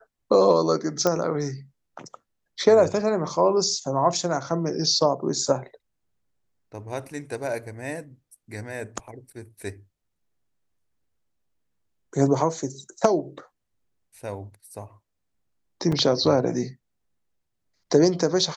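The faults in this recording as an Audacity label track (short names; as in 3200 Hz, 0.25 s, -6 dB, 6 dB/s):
1.070000	1.070000	pop -8 dBFS
15.920000	15.920000	gap 4.4 ms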